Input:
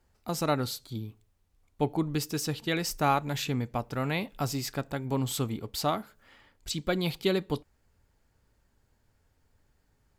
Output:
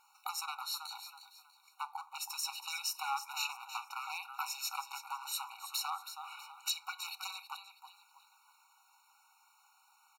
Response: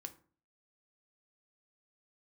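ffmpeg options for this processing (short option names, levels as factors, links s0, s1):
-filter_complex "[0:a]acrossover=split=130[s0][s1];[s1]acompressor=threshold=0.00708:ratio=6[s2];[s0][s2]amix=inputs=2:normalize=0,asplit=5[s3][s4][s5][s6][s7];[s4]adelay=322,afreqshift=37,volume=0.282[s8];[s5]adelay=644,afreqshift=74,volume=0.0955[s9];[s6]adelay=966,afreqshift=111,volume=0.0327[s10];[s7]adelay=1288,afreqshift=148,volume=0.0111[s11];[s3][s8][s9][s10][s11]amix=inputs=5:normalize=0,aeval=exprs='0.0237*(abs(mod(val(0)/0.0237+3,4)-2)-1)':c=same,asplit=2[s12][s13];[1:a]atrim=start_sample=2205[s14];[s13][s14]afir=irnorm=-1:irlink=0,volume=1.88[s15];[s12][s15]amix=inputs=2:normalize=0,afftfilt=real='re*eq(mod(floor(b*sr/1024/740),2),1)':imag='im*eq(mod(floor(b*sr/1024/740),2),1)':win_size=1024:overlap=0.75,volume=2.24"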